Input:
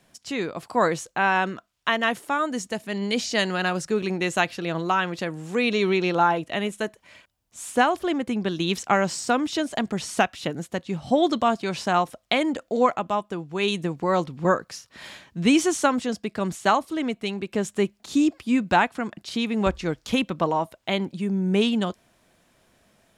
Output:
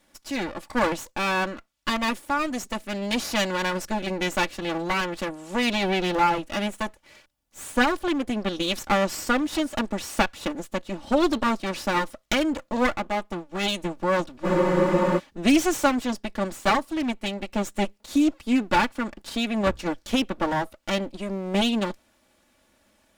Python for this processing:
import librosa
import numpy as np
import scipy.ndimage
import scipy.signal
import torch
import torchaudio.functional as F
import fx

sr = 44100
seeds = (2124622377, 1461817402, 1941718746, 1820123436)

y = fx.lower_of_two(x, sr, delay_ms=3.5)
y = fx.spec_freeze(y, sr, seeds[0], at_s=14.46, hold_s=0.72)